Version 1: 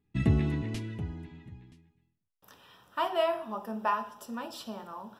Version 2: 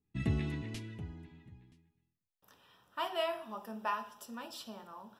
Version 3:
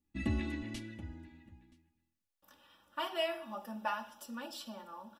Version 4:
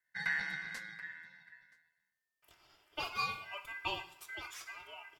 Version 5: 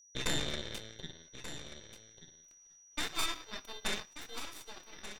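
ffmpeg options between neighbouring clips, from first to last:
ffmpeg -i in.wav -af "adynamicequalizer=threshold=0.00631:dfrequency=1600:dqfactor=0.7:tfrequency=1600:tqfactor=0.7:attack=5:release=100:ratio=0.375:range=3.5:mode=boostabove:tftype=highshelf,volume=-7.5dB" out.wav
ffmpeg -i in.wav -af "aecho=1:1:3.5:0.92,volume=-2dB" out.wav
ffmpeg -i in.wav -af "aeval=exprs='val(0)*sin(2*PI*1800*n/s)':channel_layout=same,volume=1dB" out.wav
ffmpeg -i in.wav -af "aeval=exprs='0.0944*(cos(1*acos(clip(val(0)/0.0944,-1,1)))-cos(1*PI/2))+0.0376*(cos(3*acos(clip(val(0)/0.0944,-1,1)))-cos(3*PI/2))+0.00596*(cos(5*acos(clip(val(0)/0.0944,-1,1)))-cos(5*PI/2))+0.0237*(cos(8*acos(clip(val(0)/0.0944,-1,1)))-cos(8*PI/2))':channel_layout=same,aeval=exprs='val(0)+0.000891*sin(2*PI*5800*n/s)':channel_layout=same,aecho=1:1:1184:0.266,volume=2dB" out.wav

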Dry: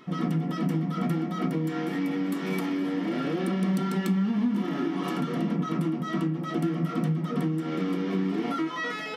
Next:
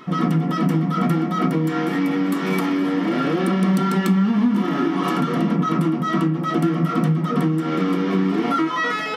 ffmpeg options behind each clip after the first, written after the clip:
ffmpeg -i in.wav -af "equalizer=frequency=1200:width_type=o:width=0.79:gain=5,volume=7.5dB" out.wav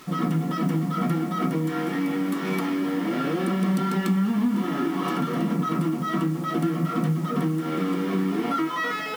ffmpeg -i in.wav -af "acrusher=bits=6:mix=0:aa=0.000001,volume=-5dB" out.wav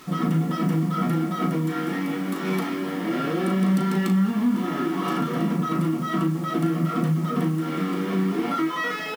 ffmpeg -i in.wav -filter_complex "[0:a]asplit=2[link_01][link_02];[link_02]adelay=37,volume=-7.5dB[link_03];[link_01][link_03]amix=inputs=2:normalize=0" out.wav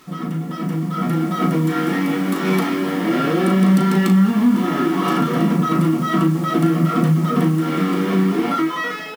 ffmpeg -i in.wav -af "dynaudnorm=framelen=450:gausssize=5:maxgain=11.5dB,volume=-2.5dB" out.wav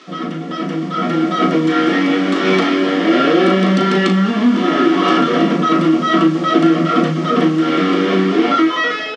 ffmpeg -i in.wav -af "highpass=frequency=220:width=0.5412,highpass=frequency=220:width=1.3066,equalizer=frequency=220:width_type=q:width=4:gain=-5,equalizer=frequency=610:width_type=q:width=4:gain=4,equalizer=frequency=910:width_type=q:width=4:gain=-8,equalizer=frequency=3200:width_type=q:width=4:gain=4,lowpass=frequency=5900:width=0.5412,lowpass=frequency=5900:width=1.3066,volume=7dB" out.wav

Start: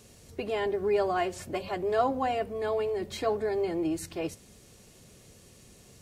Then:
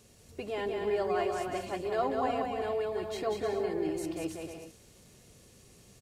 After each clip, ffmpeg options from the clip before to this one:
ffmpeg -i in.wav -af "aecho=1:1:190|304|372.4|413.4|438.1:0.631|0.398|0.251|0.158|0.1,volume=-5dB" out.wav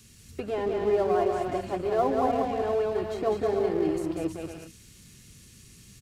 ffmpeg -i in.wav -filter_complex "[0:a]acrossover=split=320|1200[link_01][link_02][link_03];[link_02]aeval=exprs='sgn(val(0))*max(abs(val(0))-0.00335,0)':channel_layout=same[link_04];[link_03]acompressor=threshold=-55dB:ratio=6[link_05];[link_01][link_04][link_05]amix=inputs=3:normalize=0,volume=7dB" out.wav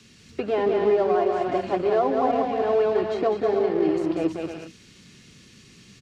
ffmpeg -i in.wav -filter_complex "[0:a]acrossover=split=150 5700:gain=0.2 1 0.0794[link_01][link_02][link_03];[link_01][link_02][link_03]amix=inputs=3:normalize=0,alimiter=limit=-18.5dB:level=0:latency=1:release=491,volume=6.5dB" out.wav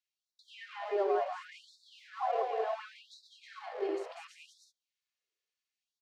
ffmpeg -i in.wav -af "agate=range=-31dB:threshold=-39dB:ratio=16:detection=peak,afftfilt=real='re*gte(b*sr/1024,340*pow(3600/340,0.5+0.5*sin(2*PI*0.7*pts/sr)))':imag='im*gte(b*sr/1024,340*pow(3600/340,0.5+0.5*sin(2*PI*0.7*pts/sr)))':win_size=1024:overlap=0.75,volume=-8dB" out.wav

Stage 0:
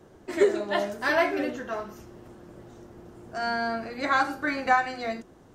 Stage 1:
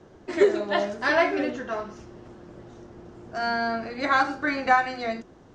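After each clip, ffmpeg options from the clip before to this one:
ffmpeg -i in.wav -af "lowpass=frequency=6700:width=0.5412,lowpass=frequency=6700:width=1.3066,volume=2dB" out.wav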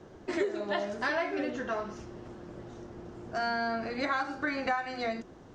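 ffmpeg -i in.wav -af "acompressor=threshold=-29dB:ratio=4" out.wav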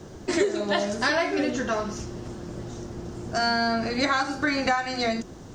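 ffmpeg -i in.wav -af "bass=frequency=250:gain=6,treble=frequency=4000:gain=13,volume=6dB" out.wav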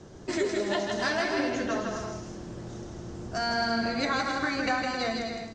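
ffmpeg -i in.wav -filter_complex "[0:a]lowpass=frequency=8200:width=0.5412,lowpass=frequency=8200:width=1.3066,asplit=2[link_01][link_02];[link_02]aecho=0:1:160|264|331.6|375.5|404.1:0.631|0.398|0.251|0.158|0.1[link_03];[link_01][link_03]amix=inputs=2:normalize=0,volume=-5.5dB" out.wav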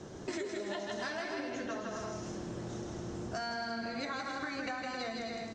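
ffmpeg -i in.wav -af "lowshelf=frequency=72:gain=-10.5,bandreject=frequency=4700:width=21,acompressor=threshold=-38dB:ratio=6,volume=2dB" out.wav

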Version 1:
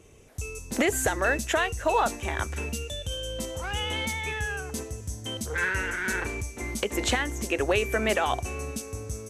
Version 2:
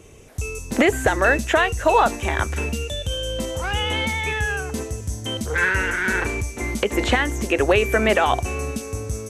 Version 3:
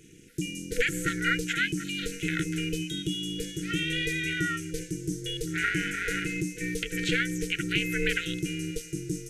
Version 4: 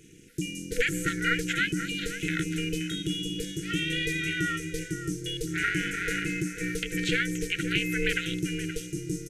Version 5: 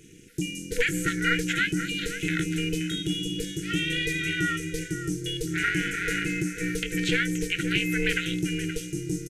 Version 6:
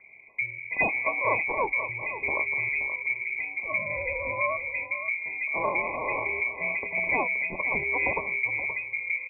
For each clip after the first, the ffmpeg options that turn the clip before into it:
ffmpeg -i in.wav -filter_complex "[0:a]acrossover=split=3200[link_01][link_02];[link_02]acompressor=threshold=-40dB:ratio=4:attack=1:release=60[link_03];[link_01][link_03]amix=inputs=2:normalize=0,volume=7.5dB" out.wav
ffmpeg -i in.wav -af "afftfilt=real='re*(1-between(b*sr/4096,260,1600))':imag='im*(1-between(b*sr/4096,260,1600))':win_size=4096:overlap=0.75,aeval=exprs='val(0)*sin(2*PI*240*n/s)':channel_layout=same,volume=-2dB" out.wav
ffmpeg -i in.wav -filter_complex "[0:a]asplit=2[link_01][link_02];[link_02]adelay=524.8,volume=-10dB,highshelf=frequency=4000:gain=-11.8[link_03];[link_01][link_03]amix=inputs=2:normalize=0" out.wav
ffmpeg -i in.wav -filter_complex "[0:a]asplit=2[link_01][link_02];[link_02]asoftclip=type=tanh:threshold=-21.5dB,volume=-11.5dB[link_03];[link_01][link_03]amix=inputs=2:normalize=0,asplit=2[link_04][link_05];[link_05]adelay=23,volume=-14dB[link_06];[link_04][link_06]amix=inputs=2:normalize=0" out.wav
ffmpeg -i in.wav -af "lowpass=frequency=2100:width_type=q:width=0.5098,lowpass=frequency=2100:width_type=q:width=0.6013,lowpass=frequency=2100:width_type=q:width=0.9,lowpass=frequency=2100:width_type=q:width=2.563,afreqshift=-2500" out.wav

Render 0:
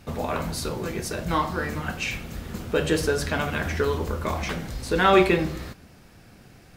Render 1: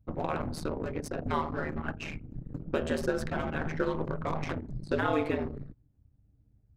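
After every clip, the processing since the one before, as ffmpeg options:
ffmpeg -i in.wav -filter_complex "[0:a]anlmdn=39.8,acrossover=split=520|1500[link_01][link_02][link_03];[link_01]acompressor=threshold=-27dB:ratio=4[link_04];[link_02]acompressor=threshold=-29dB:ratio=4[link_05];[link_03]acompressor=threshold=-42dB:ratio=4[link_06];[link_04][link_05][link_06]amix=inputs=3:normalize=0,aeval=exprs='val(0)*sin(2*PI*78*n/s)':channel_layout=same" out.wav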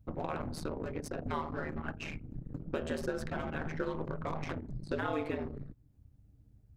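ffmpeg -i in.wav -af "acompressor=threshold=-51dB:ratio=1.5,volume=3.5dB" out.wav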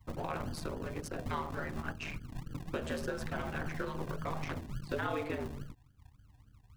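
ffmpeg -i in.wav -filter_complex "[0:a]acrossover=split=210|850[link_01][link_02][link_03];[link_01]acrusher=samples=40:mix=1:aa=0.000001:lfo=1:lforange=24:lforate=3.5[link_04];[link_02]flanger=delay=18.5:depth=3.6:speed=2.8[link_05];[link_04][link_05][link_03]amix=inputs=3:normalize=0,volume=1dB" out.wav

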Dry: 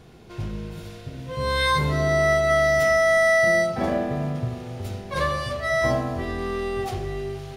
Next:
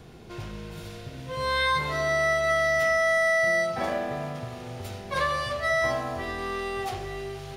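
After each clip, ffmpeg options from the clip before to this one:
ffmpeg -i in.wav -filter_complex "[0:a]acrossover=split=550|1200|4200[link_01][link_02][link_03][link_04];[link_01]acompressor=threshold=-38dB:ratio=4[link_05];[link_02]acompressor=threshold=-29dB:ratio=4[link_06];[link_03]acompressor=threshold=-26dB:ratio=4[link_07];[link_04]acompressor=threshold=-45dB:ratio=4[link_08];[link_05][link_06][link_07][link_08]amix=inputs=4:normalize=0,volume=1dB" out.wav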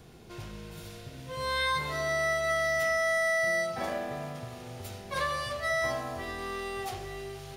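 ffmpeg -i in.wav -af "highshelf=frequency=6300:gain=8,volume=-5dB" out.wav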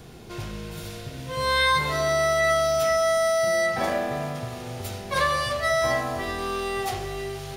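ffmpeg -i in.wav -af "bandreject=frequency=85.37:width_type=h:width=4,bandreject=frequency=170.74:width_type=h:width=4,bandreject=frequency=256.11:width_type=h:width=4,bandreject=frequency=341.48:width_type=h:width=4,bandreject=frequency=426.85:width_type=h:width=4,bandreject=frequency=512.22:width_type=h:width=4,bandreject=frequency=597.59:width_type=h:width=4,bandreject=frequency=682.96:width_type=h:width=4,bandreject=frequency=768.33:width_type=h:width=4,bandreject=frequency=853.7:width_type=h:width=4,bandreject=frequency=939.07:width_type=h:width=4,bandreject=frequency=1024.44:width_type=h:width=4,bandreject=frequency=1109.81:width_type=h:width=4,bandreject=frequency=1195.18:width_type=h:width=4,bandreject=frequency=1280.55:width_type=h:width=4,bandreject=frequency=1365.92:width_type=h:width=4,bandreject=frequency=1451.29:width_type=h:width=4,bandreject=frequency=1536.66:width_type=h:width=4,bandreject=frequency=1622.03:width_type=h:width=4,bandreject=frequency=1707.4:width_type=h:width=4,bandreject=frequency=1792.77:width_type=h:width=4,bandreject=frequency=1878.14:width_type=h:width=4,bandreject=frequency=1963.51:width_type=h:width=4,bandreject=frequency=2048.88:width_type=h:width=4,bandreject=frequency=2134.25:width_type=h:width=4,bandreject=frequency=2219.62:width_type=h:width=4,bandreject=frequency=2304.99:width_type=h:width=4,bandreject=frequency=2390.36:width_type=h:width=4,bandreject=frequency=2475.73:width_type=h:width=4,bandreject=frequency=2561.1:width_type=h:width=4,bandreject=frequency=2646.47:width_type=h:width=4,bandreject=frequency=2731.84:width_type=h:width=4,bandreject=frequency=2817.21:width_type=h:width=4,bandreject=frequency=2902.58:width_type=h:width=4,bandreject=frequency=2987.95:width_type=h:width=4,bandreject=frequency=3073.32:width_type=h:width=4,volume=8dB" out.wav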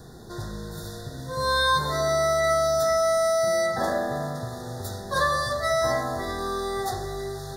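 ffmpeg -i in.wav -af "asuperstop=centerf=2600:order=20:qfactor=1.7" out.wav

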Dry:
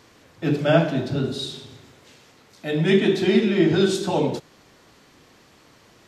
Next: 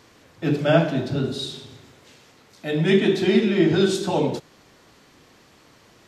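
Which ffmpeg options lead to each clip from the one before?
ffmpeg -i in.wav -af anull out.wav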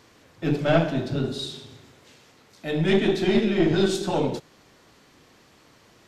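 ffmpeg -i in.wav -af "aeval=exprs='(tanh(3.16*val(0)+0.5)-tanh(0.5))/3.16':channel_layout=same" out.wav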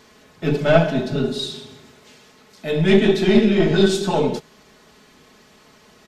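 ffmpeg -i in.wav -af "aecho=1:1:4.7:0.59,volume=3.5dB" out.wav

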